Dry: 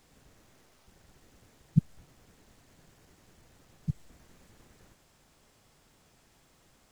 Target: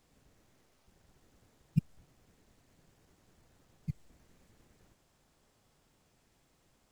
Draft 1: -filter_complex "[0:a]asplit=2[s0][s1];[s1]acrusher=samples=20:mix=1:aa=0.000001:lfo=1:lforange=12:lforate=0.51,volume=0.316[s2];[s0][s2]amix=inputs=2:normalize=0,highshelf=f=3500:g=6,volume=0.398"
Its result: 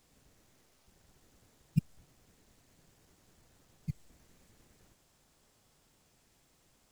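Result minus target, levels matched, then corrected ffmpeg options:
8 kHz band +5.0 dB
-filter_complex "[0:a]asplit=2[s0][s1];[s1]acrusher=samples=20:mix=1:aa=0.000001:lfo=1:lforange=12:lforate=0.51,volume=0.316[s2];[s0][s2]amix=inputs=2:normalize=0,volume=0.398"

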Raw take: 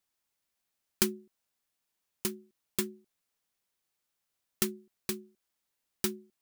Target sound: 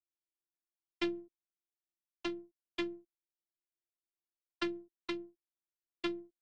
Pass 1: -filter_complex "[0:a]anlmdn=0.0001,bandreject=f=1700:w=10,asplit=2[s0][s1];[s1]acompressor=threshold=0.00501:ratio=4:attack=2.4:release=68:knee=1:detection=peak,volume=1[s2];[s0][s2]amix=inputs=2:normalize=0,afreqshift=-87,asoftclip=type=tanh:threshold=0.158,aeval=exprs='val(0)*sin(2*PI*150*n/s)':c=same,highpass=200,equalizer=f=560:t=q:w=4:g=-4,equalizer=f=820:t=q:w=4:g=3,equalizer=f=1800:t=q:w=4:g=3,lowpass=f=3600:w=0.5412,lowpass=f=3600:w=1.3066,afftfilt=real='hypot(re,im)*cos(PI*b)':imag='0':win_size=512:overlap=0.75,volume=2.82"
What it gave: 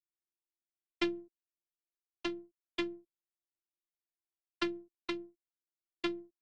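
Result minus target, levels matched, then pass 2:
saturation: distortion -7 dB
-filter_complex "[0:a]anlmdn=0.0001,bandreject=f=1700:w=10,asplit=2[s0][s1];[s1]acompressor=threshold=0.00501:ratio=4:attack=2.4:release=68:knee=1:detection=peak,volume=1[s2];[s0][s2]amix=inputs=2:normalize=0,afreqshift=-87,asoftclip=type=tanh:threshold=0.075,aeval=exprs='val(0)*sin(2*PI*150*n/s)':c=same,highpass=200,equalizer=f=560:t=q:w=4:g=-4,equalizer=f=820:t=q:w=4:g=3,equalizer=f=1800:t=q:w=4:g=3,lowpass=f=3600:w=0.5412,lowpass=f=3600:w=1.3066,afftfilt=real='hypot(re,im)*cos(PI*b)':imag='0':win_size=512:overlap=0.75,volume=2.82"

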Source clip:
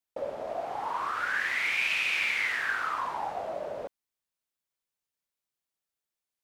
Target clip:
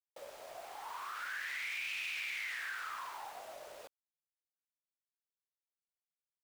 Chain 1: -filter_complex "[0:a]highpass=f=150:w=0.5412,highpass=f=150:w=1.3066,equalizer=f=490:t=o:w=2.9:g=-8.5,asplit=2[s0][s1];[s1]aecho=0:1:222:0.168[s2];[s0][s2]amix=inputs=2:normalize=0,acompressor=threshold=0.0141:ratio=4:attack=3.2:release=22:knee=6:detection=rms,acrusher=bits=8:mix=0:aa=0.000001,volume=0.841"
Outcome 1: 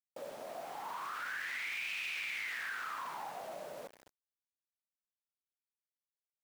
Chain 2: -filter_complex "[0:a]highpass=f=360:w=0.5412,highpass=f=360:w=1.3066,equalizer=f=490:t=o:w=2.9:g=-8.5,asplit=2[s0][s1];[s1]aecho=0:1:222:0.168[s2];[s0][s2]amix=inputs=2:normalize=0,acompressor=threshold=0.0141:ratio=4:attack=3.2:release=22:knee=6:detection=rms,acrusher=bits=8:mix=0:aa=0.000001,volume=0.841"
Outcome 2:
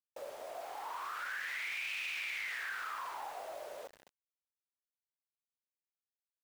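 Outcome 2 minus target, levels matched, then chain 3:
500 Hz band +4.5 dB
-filter_complex "[0:a]highpass=f=360:w=0.5412,highpass=f=360:w=1.3066,equalizer=f=490:t=o:w=2.9:g=-15,asplit=2[s0][s1];[s1]aecho=0:1:222:0.168[s2];[s0][s2]amix=inputs=2:normalize=0,acompressor=threshold=0.0141:ratio=4:attack=3.2:release=22:knee=6:detection=rms,acrusher=bits=8:mix=0:aa=0.000001,volume=0.841"

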